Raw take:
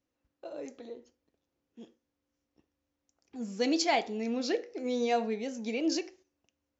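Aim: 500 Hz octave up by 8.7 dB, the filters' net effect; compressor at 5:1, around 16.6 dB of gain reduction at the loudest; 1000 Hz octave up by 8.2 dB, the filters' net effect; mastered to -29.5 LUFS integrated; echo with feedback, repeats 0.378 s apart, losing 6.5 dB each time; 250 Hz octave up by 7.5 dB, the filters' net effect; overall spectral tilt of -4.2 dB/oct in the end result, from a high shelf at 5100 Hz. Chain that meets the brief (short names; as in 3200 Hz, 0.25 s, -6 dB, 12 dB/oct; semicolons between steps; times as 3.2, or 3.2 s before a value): bell 250 Hz +6.5 dB; bell 500 Hz +6.5 dB; bell 1000 Hz +8 dB; high shelf 5100 Hz +5 dB; compressor 5:1, threshold -35 dBFS; feedback echo 0.378 s, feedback 47%, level -6.5 dB; gain +8.5 dB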